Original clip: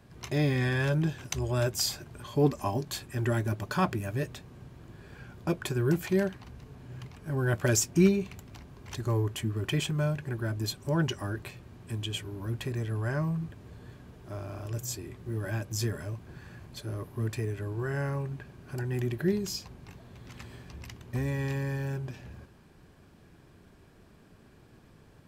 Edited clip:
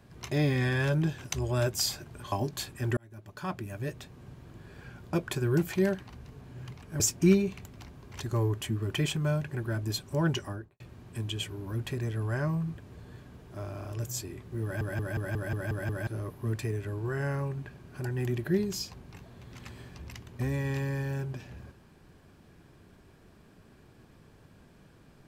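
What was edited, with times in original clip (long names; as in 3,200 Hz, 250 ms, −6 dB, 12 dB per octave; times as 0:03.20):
0:02.32–0:02.66: remove
0:03.31–0:04.63: fade in
0:07.34–0:07.74: remove
0:11.11–0:11.54: fade out and dull
0:15.37: stutter in place 0.18 s, 8 plays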